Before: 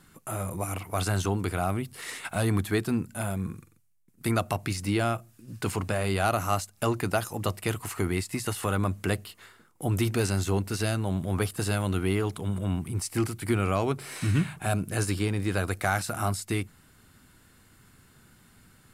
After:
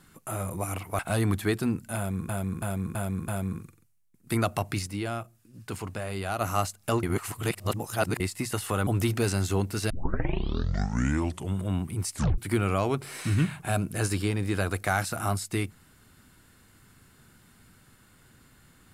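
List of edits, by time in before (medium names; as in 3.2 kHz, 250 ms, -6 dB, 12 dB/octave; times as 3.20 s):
0.99–2.25 s: delete
3.22–3.55 s: loop, 5 plays
4.81–6.35 s: gain -6 dB
6.97–8.14 s: reverse
8.81–9.84 s: delete
10.87 s: tape start 1.69 s
13.10 s: tape stop 0.25 s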